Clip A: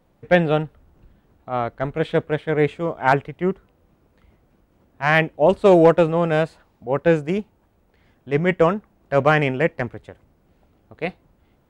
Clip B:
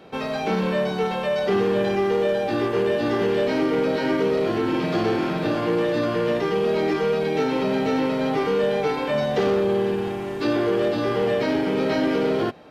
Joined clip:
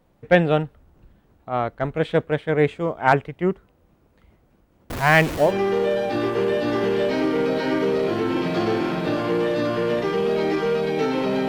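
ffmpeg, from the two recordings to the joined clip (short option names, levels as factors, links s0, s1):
-filter_complex "[0:a]asettb=1/sr,asplit=3[s0][s1][s2];[s0]atrim=end=4.904[s3];[s1]atrim=start=4.9:end=5.55,asetpts=PTS-STARTPTS,afade=t=in:d=0.004:c=qsin,afade=t=out:st=0.646:d=0.004:c=qsin,aeval=exprs='val(0)+0.5*0.0708*sgn(val(0))':c=same[s4];[s2]atrim=start=5.546[s5];[s3][s4]acrossfade=d=0.004:c1=hsin:c2=qsin[s6];[s6][s5]acrossfade=d=0.004:c1=qsin:c2=hsin,apad=whole_dur=11.48,atrim=end=11.48,atrim=end=5.55,asetpts=PTS-STARTPTS[s7];[1:a]atrim=start=1.79:end=7.86,asetpts=PTS-STARTPTS[s8];[s7][s8]acrossfade=d=0.14:c1=tri:c2=tri"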